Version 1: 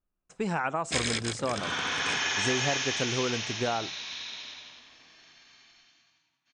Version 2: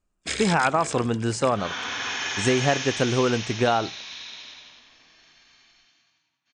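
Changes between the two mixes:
speech +8.5 dB; first sound: entry -0.65 s

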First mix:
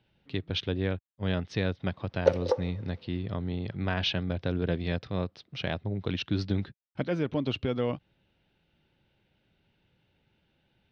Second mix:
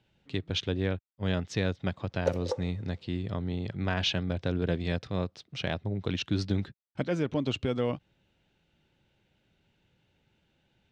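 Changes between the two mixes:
background -6.0 dB; master: remove Savitzky-Golay filter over 15 samples

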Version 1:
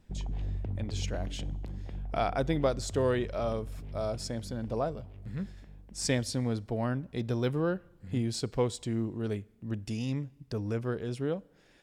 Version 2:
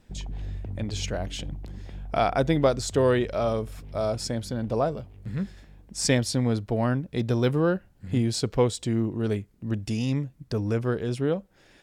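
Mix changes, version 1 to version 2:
speech +7.0 dB; reverb: off

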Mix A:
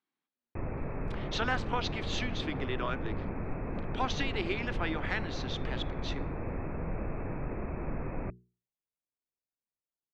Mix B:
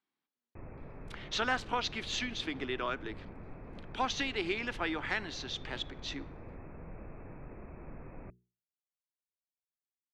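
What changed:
background -11.5 dB; master: remove distance through air 58 m

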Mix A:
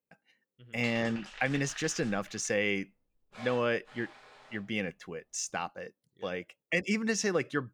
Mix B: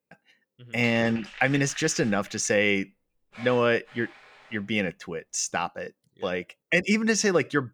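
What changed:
speech +7.0 dB; background: add peaking EQ 2.2 kHz +7 dB 1.1 oct

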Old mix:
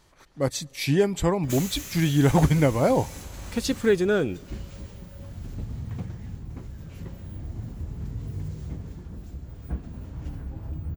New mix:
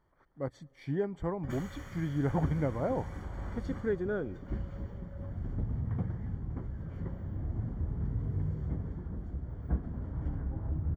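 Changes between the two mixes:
speech -11.0 dB; master: add Savitzky-Golay filter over 41 samples

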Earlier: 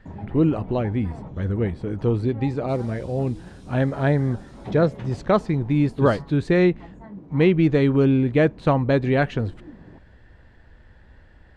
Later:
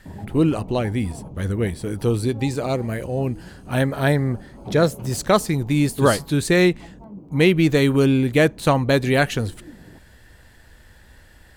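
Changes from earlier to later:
background: add boxcar filter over 24 samples; master: remove tape spacing loss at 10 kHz 30 dB

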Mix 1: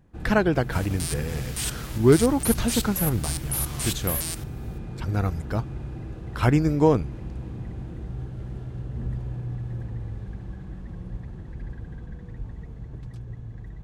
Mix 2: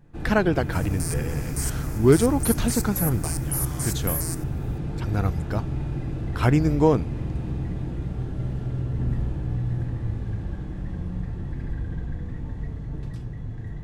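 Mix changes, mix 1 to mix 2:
first sound: send on; second sound: add Butterworth band-stop 3.2 kHz, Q 1

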